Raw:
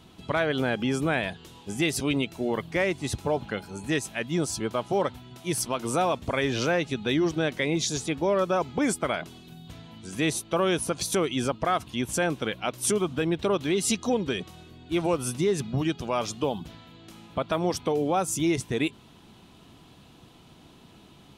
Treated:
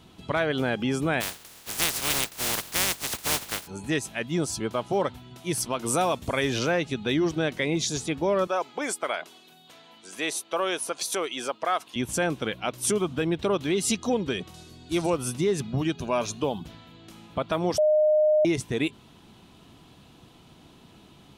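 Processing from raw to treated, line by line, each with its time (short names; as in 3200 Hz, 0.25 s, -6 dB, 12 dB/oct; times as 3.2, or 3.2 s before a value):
1.2–3.66 spectral contrast lowered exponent 0.15
5.86–6.59 high shelf 6900 Hz +11.5 dB
8.47–11.96 HPF 480 Hz
14.54–15.1 band shelf 7100 Hz +11 dB
15.95–16.4 ripple EQ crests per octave 1.5, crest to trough 7 dB
17.78–18.45 bleep 612 Hz -17 dBFS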